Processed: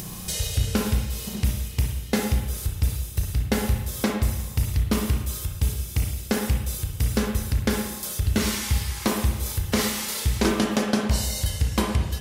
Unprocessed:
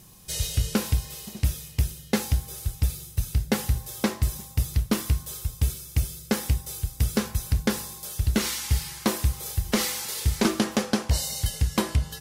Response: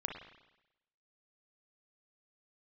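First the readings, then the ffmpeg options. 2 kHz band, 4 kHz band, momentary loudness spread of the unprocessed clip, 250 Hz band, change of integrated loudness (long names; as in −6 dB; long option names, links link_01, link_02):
+2.5 dB, +1.0 dB, 4 LU, +2.5 dB, +1.5 dB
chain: -filter_complex "[0:a]acompressor=mode=upward:threshold=-24dB:ratio=2.5[link_01];[1:a]atrim=start_sample=2205[link_02];[link_01][link_02]afir=irnorm=-1:irlink=0,volume=1.5dB"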